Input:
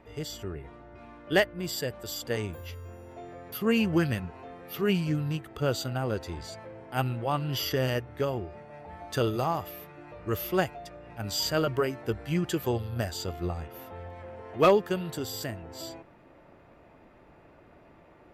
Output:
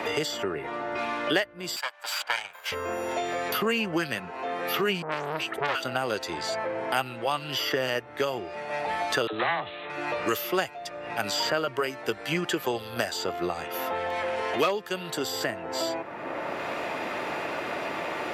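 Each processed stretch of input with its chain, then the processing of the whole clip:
1.76–2.72 minimum comb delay 1.3 ms + HPF 1200 Hz + transient shaper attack -2 dB, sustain -11 dB
5.02–5.83 bell 65 Hz -14.5 dB 0.64 oct + dispersion highs, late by 99 ms, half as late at 910 Hz + core saturation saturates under 1500 Hz
9.27–9.9 self-modulated delay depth 0.27 ms + Chebyshev low-pass 4000 Hz, order 8 + dispersion lows, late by 54 ms, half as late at 510 Hz
whole clip: weighting filter A; three-band squash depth 100%; gain +5.5 dB

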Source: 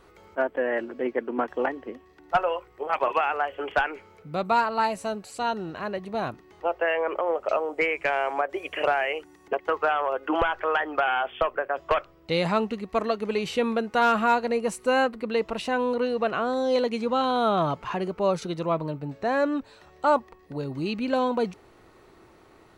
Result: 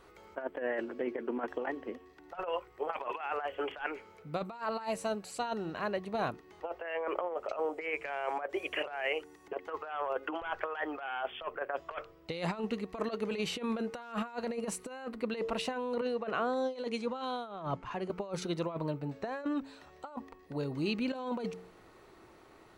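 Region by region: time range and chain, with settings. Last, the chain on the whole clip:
16.01–18.1 careless resampling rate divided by 2×, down none, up filtered + three-band expander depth 100%
whole clip: low shelf 230 Hz -3 dB; de-hum 90.71 Hz, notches 5; negative-ratio compressor -28 dBFS, ratio -0.5; gain -6 dB

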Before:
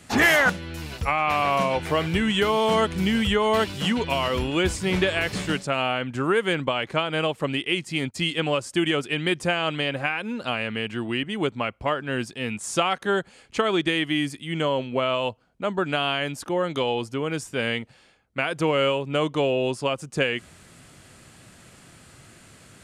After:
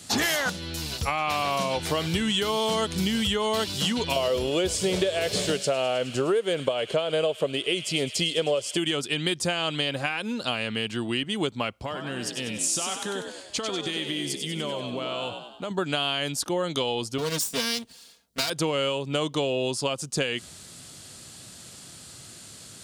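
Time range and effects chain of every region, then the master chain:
4.16–8.77 band shelf 520 Hz +11 dB 1 oct + thin delay 0.104 s, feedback 81%, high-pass 2400 Hz, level -13 dB
11.73–15.71 compressor, threshold -28 dBFS + frequency-shifting echo 96 ms, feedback 53%, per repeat +53 Hz, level -6.5 dB
17.18–18.5 minimum comb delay 4.3 ms + high shelf 8100 Hz +8 dB + notch 780 Hz, Q 11
whole clip: HPF 58 Hz; resonant high shelf 3000 Hz +8.5 dB, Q 1.5; compressor, threshold -22 dBFS

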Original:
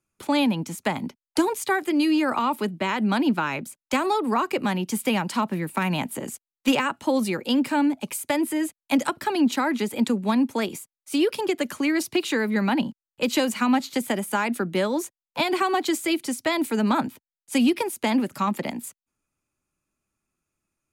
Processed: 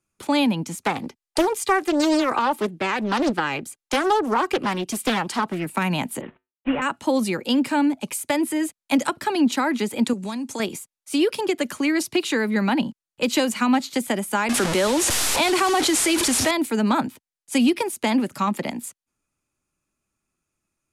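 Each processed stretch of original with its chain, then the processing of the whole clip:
0.82–5.66 comb 2.5 ms, depth 41% + Doppler distortion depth 0.74 ms
6.21–6.82 CVSD 16 kbps + dynamic EQ 1600 Hz, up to +4 dB, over -45 dBFS, Q 0.97 + resonator 53 Hz, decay 0.24 s, harmonics odd, mix 50%
10.13–10.6 bell 7100 Hz +13.5 dB 1.3 oct + compressor 4:1, threshold -29 dBFS
14.49–16.51 delta modulation 64 kbps, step -25.5 dBFS + bell 160 Hz -7.5 dB 0.78 oct + fast leveller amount 70%
whole clip: LPF 11000 Hz 12 dB/oct; high shelf 6800 Hz +4 dB; gain +1.5 dB

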